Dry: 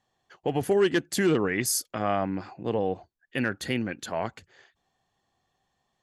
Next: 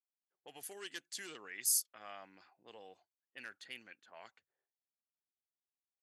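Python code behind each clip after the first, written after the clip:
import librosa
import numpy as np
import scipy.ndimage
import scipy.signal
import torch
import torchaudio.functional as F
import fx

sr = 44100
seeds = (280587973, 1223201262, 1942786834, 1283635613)

y = fx.env_lowpass(x, sr, base_hz=320.0, full_db=-23.5)
y = np.diff(y, prepend=0.0)
y = y * librosa.db_to_amplitude(-5.0)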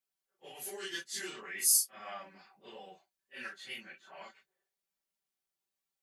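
y = fx.phase_scramble(x, sr, seeds[0], window_ms=100)
y = y + 0.7 * np.pad(y, (int(5.2 * sr / 1000.0), 0))[:len(y)]
y = y * librosa.db_to_amplitude(4.0)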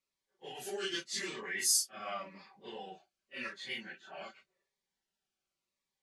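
y = fx.air_absorb(x, sr, metres=75.0)
y = fx.notch_cascade(y, sr, direction='falling', hz=0.88)
y = y * librosa.db_to_amplitude(6.5)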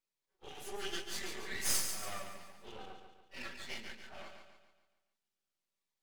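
y = np.maximum(x, 0.0)
y = fx.echo_feedback(y, sr, ms=142, feedback_pct=47, wet_db=-7)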